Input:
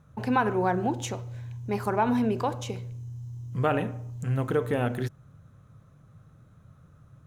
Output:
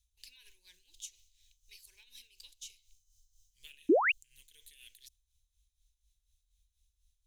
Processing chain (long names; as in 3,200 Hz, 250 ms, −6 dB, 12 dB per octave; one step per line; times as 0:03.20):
inverse Chebyshev band-stop filter 110–1,400 Hz, stop band 50 dB
sound drawn into the spectrogram rise, 0:03.89–0:04.12, 270–3,000 Hz −21 dBFS
dynamic equaliser 4,300 Hz, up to −4 dB, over −50 dBFS, Q 0.8
amplitude tremolo 4.1 Hz, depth 67%